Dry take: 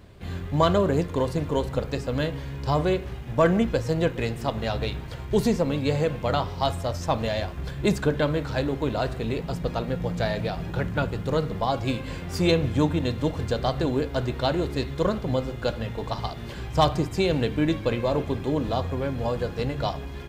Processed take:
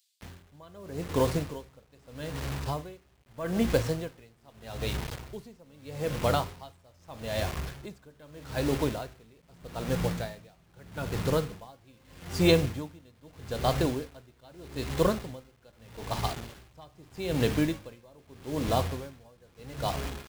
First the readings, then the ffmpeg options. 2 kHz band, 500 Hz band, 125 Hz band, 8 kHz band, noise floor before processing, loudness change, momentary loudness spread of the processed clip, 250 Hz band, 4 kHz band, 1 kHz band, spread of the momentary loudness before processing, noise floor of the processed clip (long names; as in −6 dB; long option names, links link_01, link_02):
−6.0 dB, −7.0 dB, −7.0 dB, +0.5 dB, −36 dBFS, −5.0 dB, 22 LU, −7.0 dB, −5.0 dB, −7.5 dB, 7 LU, −62 dBFS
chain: -filter_complex "[0:a]acrossover=split=4200[link_01][link_02];[link_01]acrusher=bits=5:mix=0:aa=0.000001[link_03];[link_03][link_02]amix=inputs=2:normalize=0,aeval=exprs='val(0)*pow(10,-31*(0.5-0.5*cos(2*PI*0.8*n/s))/20)':channel_layout=same"